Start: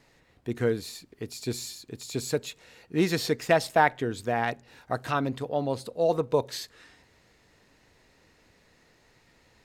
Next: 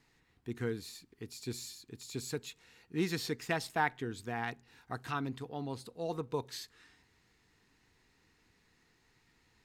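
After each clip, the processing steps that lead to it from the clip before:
parametric band 580 Hz −14.5 dB 0.4 octaves
level −7.5 dB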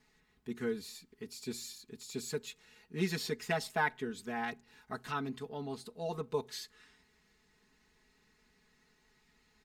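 comb filter 4.7 ms, depth 90%
level −2.5 dB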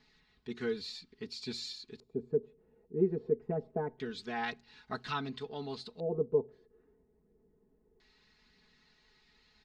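phase shifter 0.81 Hz, delay 2.8 ms, feedback 23%
auto-filter low-pass square 0.25 Hz 460–4,300 Hz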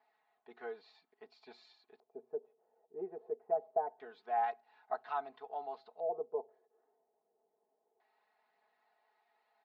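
four-pole ladder band-pass 770 Hz, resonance 75%
level +8.5 dB

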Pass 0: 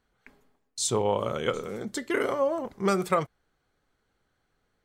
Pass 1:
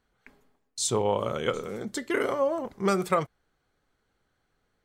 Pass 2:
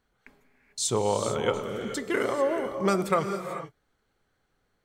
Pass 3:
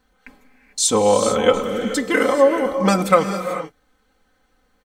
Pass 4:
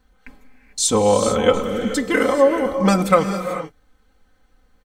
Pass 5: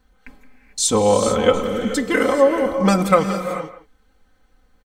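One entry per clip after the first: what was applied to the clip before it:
no processing that can be heard
reverb whose tail is shaped and stops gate 470 ms rising, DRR 7 dB
comb filter 3.9 ms, depth 98%; level +7 dB
low-shelf EQ 120 Hz +10.5 dB; level −1 dB
far-end echo of a speakerphone 170 ms, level −14 dB

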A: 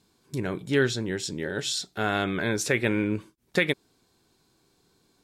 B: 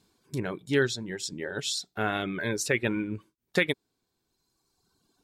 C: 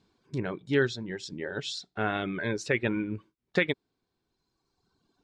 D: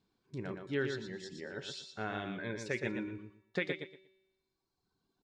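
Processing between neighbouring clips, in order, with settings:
reverb reduction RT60 1.7 s; level −1 dB
high-frequency loss of the air 130 metres
tuned comb filter 190 Hz, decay 1.1 s, mix 60%; on a send: repeating echo 118 ms, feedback 21%, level −6 dB; on the sum: level −2 dB

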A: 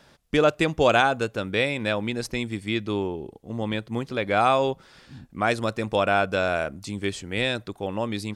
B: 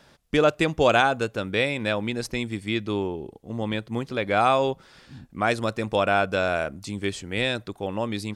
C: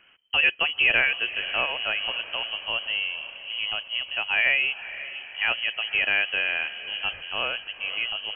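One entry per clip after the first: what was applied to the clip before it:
no processing that can be heard
high-frequency loss of the air 140 metres; voice inversion scrambler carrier 3,100 Hz; feedback delay with all-pass diffusion 507 ms, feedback 55%, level −14 dB; level −1.5 dB

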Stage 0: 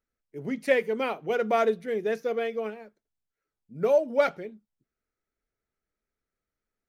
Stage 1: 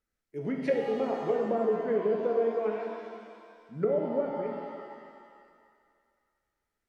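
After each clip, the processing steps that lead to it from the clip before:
treble cut that deepens with the level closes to 380 Hz, closed at −22.5 dBFS
reverb with rising layers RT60 2 s, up +7 semitones, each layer −8 dB, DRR 1 dB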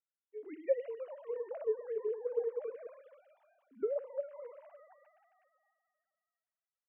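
three sine waves on the formant tracks
level −9 dB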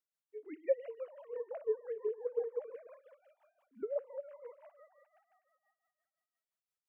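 amplitude tremolo 5.8 Hz, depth 77%
level +1 dB

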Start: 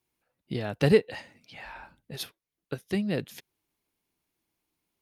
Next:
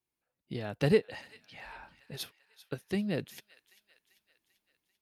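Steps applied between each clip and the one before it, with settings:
automatic gain control gain up to 5.5 dB
delay with a high-pass on its return 392 ms, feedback 56%, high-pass 1,500 Hz, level −17 dB
level −9 dB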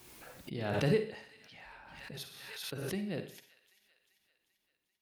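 convolution reverb RT60 0.40 s, pre-delay 41 ms, DRR 7.5 dB
background raised ahead of every attack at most 35 dB per second
level −6 dB

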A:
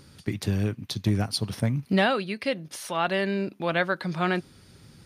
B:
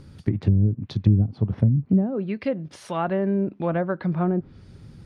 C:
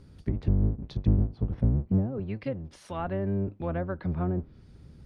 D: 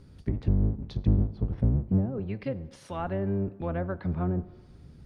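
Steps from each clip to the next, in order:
spectral tilt −2.5 dB per octave; treble cut that deepens with the level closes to 310 Hz, closed at −15.5 dBFS
sub-octave generator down 1 octave, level 0 dB; level −8 dB
dense smooth reverb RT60 1.3 s, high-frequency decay 0.65×, DRR 16 dB

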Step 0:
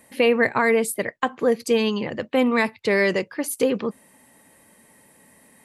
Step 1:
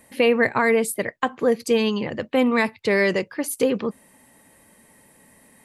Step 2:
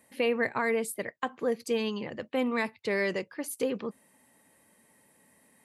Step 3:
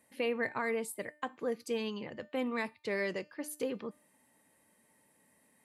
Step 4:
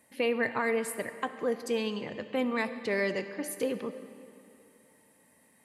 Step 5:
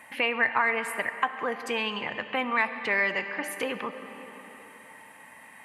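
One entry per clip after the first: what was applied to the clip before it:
low-shelf EQ 68 Hz +8.5 dB
high-pass filter 120 Hz 6 dB per octave; level −9 dB
tuned comb filter 300 Hz, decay 0.44 s, harmonics all, mix 50%
comb and all-pass reverb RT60 2.6 s, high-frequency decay 0.8×, pre-delay 25 ms, DRR 11 dB; level +4.5 dB
flat-topped bell 1,500 Hz +14 dB 2.4 octaves; downward compressor 1.5 to 1, threshold −49 dBFS, peak gain reduction 13 dB; level +6 dB

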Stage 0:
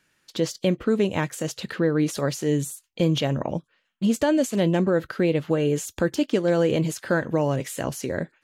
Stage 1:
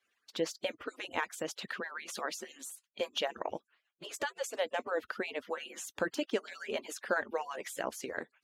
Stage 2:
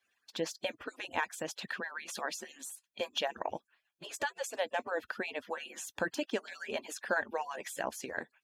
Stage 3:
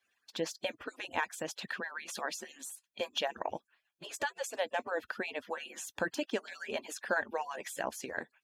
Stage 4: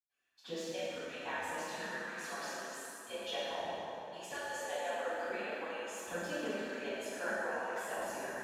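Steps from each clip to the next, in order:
harmonic-percussive split with one part muted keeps percussive; high-pass filter 1,000 Hz 6 dB per octave; high-shelf EQ 3,000 Hz −10 dB
comb filter 1.2 ms, depth 31%
no processing that can be heard
convolution reverb RT60 3.4 s, pre-delay 88 ms; level +13 dB

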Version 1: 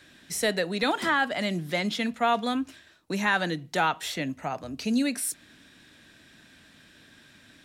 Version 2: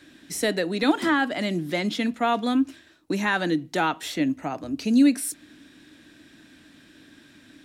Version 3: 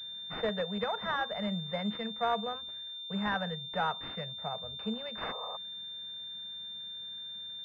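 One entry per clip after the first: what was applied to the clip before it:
parametric band 300 Hz +12 dB 0.53 octaves
sound drawn into the spectrogram noise, 0:05.21–0:05.57, 410–1,300 Hz −35 dBFS; elliptic band-stop filter 210–440 Hz; switching amplifier with a slow clock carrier 3,600 Hz; level −5.5 dB

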